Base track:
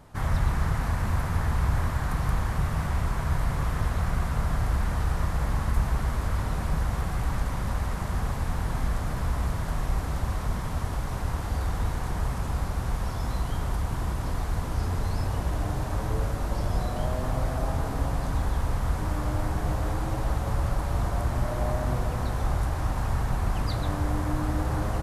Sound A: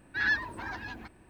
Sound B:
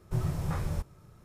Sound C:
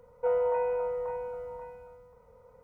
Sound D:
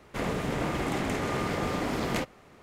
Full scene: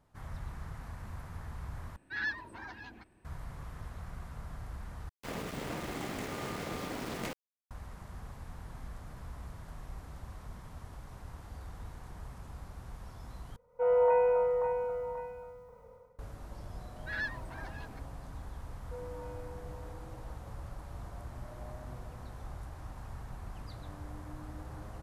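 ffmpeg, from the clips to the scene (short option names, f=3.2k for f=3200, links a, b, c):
-filter_complex "[1:a]asplit=2[a][b];[3:a]asplit=2[c][d];[0:a]volume=-17.5dB[e];[a]aresample=32000,aresample=44100[f];[4:a]aeval=exprs='val(0)*gte(abs(val(0)),0.0237)':c=same[g];[c]dynaudnorm=f=120:g=5:m=14dB[h];[e]asplit=4[i][j][k][l];[i]atrim=end=1.964[m];[f]atrim=end=1.29,asetpts=PTS-STARTPTS,volume=-7.5dB[n];[j]atrim=start=3.246:end=5.094[o];[g]atrim=end=2.62,asetpts=PTS-STARTPTS,volume=-8.5dB[p];[k]atrim=start=7.706:end=13.564[q];[h]atrim=end=2.63,asetpts=PTS-STARTPTS,volume=-10.5dB[r];[l]atrim=start=16.186[s];[b]atrim=end=1.29,asetpts=PTS-STARTPTS,volume=-9dB,afade=t=in:d=0.004:c=hsin,afade=t=out:st=1.286:d=0.004:c=hsin,adelay=16920[t];[d]atrim=end=2.63,asetpts=PTS-STARTPTS,volume=-18dB,afade=t=in:d=0.004:c=hsin,afade=t=out:st=2.626:d=0.004:c=hsin,adelay=18680[u];[m][n]acrossfade=d=0.004:c1=hsin:c2=hsin[v];[v][o]acrossfade=d=0.004:c1=hsin:c2=hsin[w];[w][p]acrossfade=d=0.004:c1=hsin:c2=hsin[x];[x][q]acrossfade=d=0.004:c1=hsin:c2=hsin[y];[y][r]acrossfade=d=0.004:c1=hsin:c2=hsin[z];[z][s]acrossfade=d=0.004:c1=hsin:c2=hsin[aa];[aa][t][u]amix=inputs=3:normalize=0"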